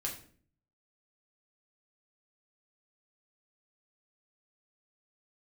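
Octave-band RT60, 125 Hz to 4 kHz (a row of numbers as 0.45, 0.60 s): 0.85, 0.70, 0.55, 0.45, 0.40, 0.35 s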